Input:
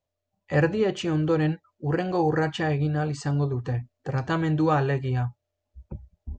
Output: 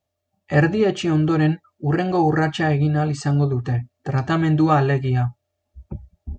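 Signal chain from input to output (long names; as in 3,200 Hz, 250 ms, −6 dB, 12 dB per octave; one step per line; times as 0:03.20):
notch comb filter 500 Hz
level +6.5 dB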